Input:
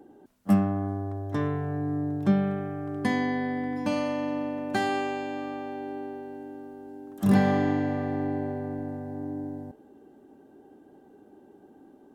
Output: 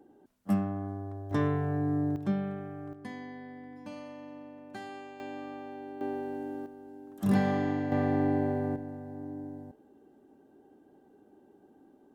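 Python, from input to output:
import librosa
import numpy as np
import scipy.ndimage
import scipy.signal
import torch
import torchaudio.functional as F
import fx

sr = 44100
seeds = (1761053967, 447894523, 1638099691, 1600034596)

y = fx.gain(x, sr, db=fx.steps((0.0, -6.5), (1.31, 0.0), (2.16, -7.5), (2.93, -16.0), (5.2, -7.0), (6.01, 3.0), (6.66, -5.0), (7.92, 2.0), (8.76, -6.0)))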